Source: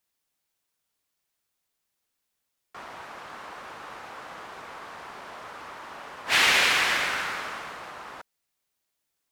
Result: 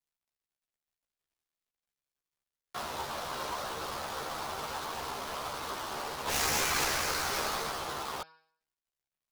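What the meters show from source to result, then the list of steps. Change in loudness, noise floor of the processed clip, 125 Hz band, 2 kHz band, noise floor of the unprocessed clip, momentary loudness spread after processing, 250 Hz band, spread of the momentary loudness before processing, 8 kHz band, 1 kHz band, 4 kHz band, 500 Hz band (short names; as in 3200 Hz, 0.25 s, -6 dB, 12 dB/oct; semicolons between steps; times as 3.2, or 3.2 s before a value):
-11.0 dB, under -85 dBFS, +5.0 dB, -10.0 dB, -81 dBFS, 10 LU, +1.0 dB, 22 LU, +0.5 dB, -1.0 dB, -7.5 dB, +1.0 dB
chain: switching dead time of 0.16 ms; de-hum 159.8 Hz, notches 34; in parallel at +2 dB: negative-ratio compressor -37 dBFS, ratio -1; on the sum: dynamic EQ 1800 Hz, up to -5 dB, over -42 dBFS, Q 2.1; chorus voices 6, 0.61 Hz, delay 14 ms, depth 1.5 ms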